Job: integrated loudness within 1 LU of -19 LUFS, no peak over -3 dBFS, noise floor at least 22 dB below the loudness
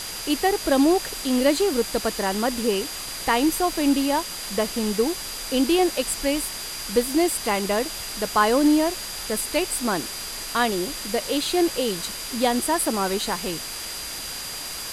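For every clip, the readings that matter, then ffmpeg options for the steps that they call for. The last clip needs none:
steady tone 4800 Hz; tone level -36 dBFS; noise floor -33 dBFS; noise floor target -46 dBFS; loudness -23.5 LUFS; peak -6.5 dBFS; loudness target -19.0 LUFS
-> -af "bandreject=f=4.8k:w=30"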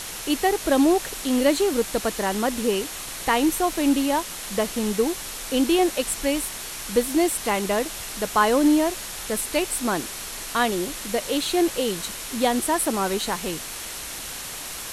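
steady tone none; noise floor -35 dBFS; noise floor target -46 dBFS
-> -af "afftdn=nr=11:nf=-35"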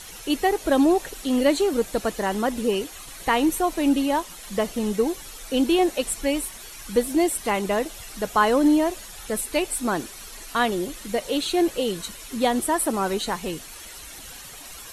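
noise floor -41 dBFS; noise floor target -46 dBFS
-> -af "afftdn=nr=6:nf=-41"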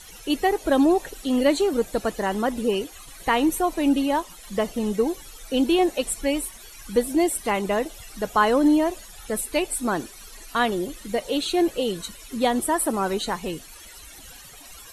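noise floor -44 dBFS; noise floor target -46 dBFS
-> -af "afftdn=nr=6:nf=-44"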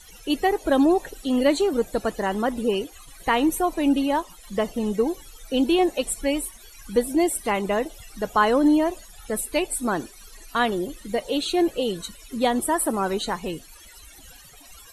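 noise floor -47 dBFS; loudness -24.0 LUFS; peak -7.0 dBFS; loudness target -19.0 LUFS
-> -af "volume=5dB,alimiter=limit=-3dB:level=0:latency=1"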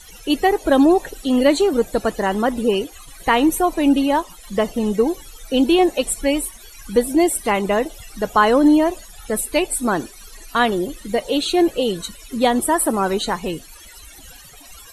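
loudness -19.0 LUFS; peak -3.0 dBFS; noise floor -42 dBFS

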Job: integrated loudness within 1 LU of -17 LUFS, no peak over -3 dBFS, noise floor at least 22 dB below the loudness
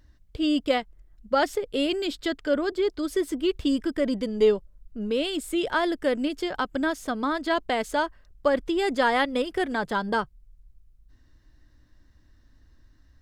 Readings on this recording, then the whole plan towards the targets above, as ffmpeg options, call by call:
loudness -26.5 LUFS; peak -10.0 dBFS; loudness target -17.0 LUFS
-> -af "volume=9.5dB,alimiter=limit=-3dB:level=0:latency=1"

